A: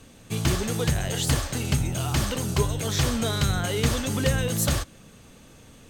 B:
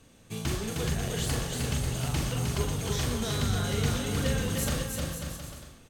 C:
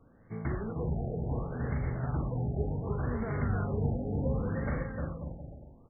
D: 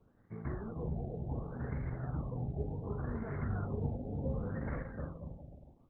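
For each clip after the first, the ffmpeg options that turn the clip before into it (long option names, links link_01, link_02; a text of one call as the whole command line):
ffmpeg -i in.wav -filter_complex "[0:a]asplit=2[link_01][link_02];[link_02]adelay=41,volume=-5.5dB[link_03];[link_01][link_03]amix=inputs=2:normalize=0,asplit=2[link_04][link_05];[link_05]aecho=0:1:310|542.5|716.9|847.7|945.7:0.631|0.398|0.251|0.158|0.1[link_06];[link_04][link_06]amix=inputs=2:normalize=0,volume=-8dB" out.wav
ffmpeg -i in.wav -af "afftfilt=real='re*lt(b*sr/1024,830*pow(2300/830,0.5+0.5*sin(2*PI*0.68*pts/sr)))':imag='im*lt(b*sr/1024,830*pow(2300/830,0.5+0.5*sin(2*PI*0.68*pts/sr)))':win_size=1024:overlap=0.75,volume=-2dB" out.wav
ffmpeg -i in.wav -af "bandreject=frequency=383.4:width_type=h:width=4,bandreject=frequency=766.8:width_type=h:width=4,bandreject=frequency=1150.2:width_type=h:width=4,volume=-5dB" -ar 48000 -c:a libopus -b:a 8k out.opus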